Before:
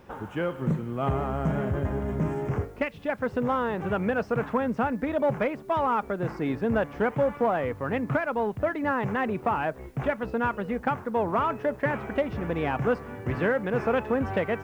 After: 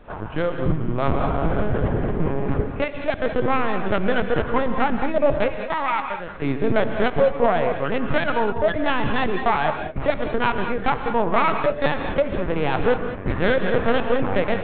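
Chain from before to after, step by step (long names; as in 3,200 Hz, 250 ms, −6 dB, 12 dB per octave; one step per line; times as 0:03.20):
stylus tracing distortion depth 0.16 ms
0:05.48–0:06.43: high-pass filter 1,200 Hz 6 dB per octave
linear-prediction vocoder at 8 kHz pitch kept
reverb whose tail is shaped and stops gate 230 ms rising, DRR 6.5 dB
level +6 dB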